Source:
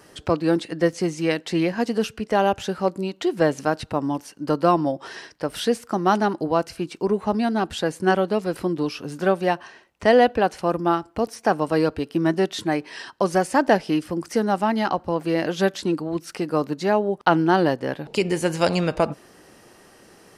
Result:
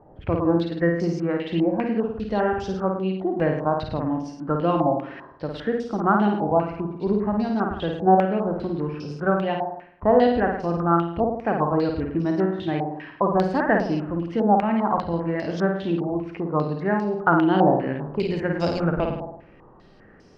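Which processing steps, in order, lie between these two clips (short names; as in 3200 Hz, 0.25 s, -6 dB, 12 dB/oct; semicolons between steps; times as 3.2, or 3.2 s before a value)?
tilt -3.5 dB/oct; notches 60/120/180/240/300/360/420/480 Hz; on a send: flutter echo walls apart 9.1 m, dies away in 0.74 s; on the sum: stepped low-pass 5 Hz 800–5400 Hz; gain -8 dB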